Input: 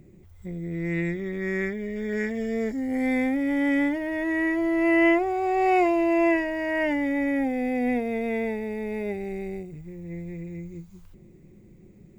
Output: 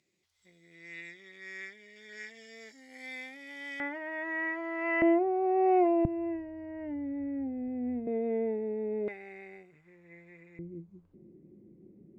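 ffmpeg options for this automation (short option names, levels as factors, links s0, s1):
-af "asetnsamples=n=441:p=0,asendcmd='3.8 bandpass f 1300;5.02 bandpass f 470;6.05 bandpass f 130;8.07 bandpass f 370;9.08 bandpass f 1600;10.59 bandpass f 300',bandpass=f=4500:t=q:w=1.6:csg=0"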